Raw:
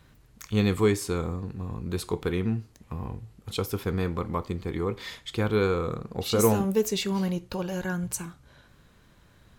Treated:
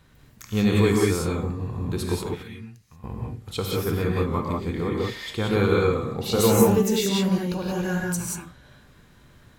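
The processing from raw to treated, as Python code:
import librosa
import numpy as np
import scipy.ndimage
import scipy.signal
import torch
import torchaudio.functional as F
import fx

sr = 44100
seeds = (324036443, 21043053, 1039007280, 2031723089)

y = fx.tone_stack(x, sr, knobs='5-5-5', at=(2.24, 3.04))
y = fx.rev_gated(y, sr, seeds[0], gate_ms=210, shape='rising', drr_db=-2.5)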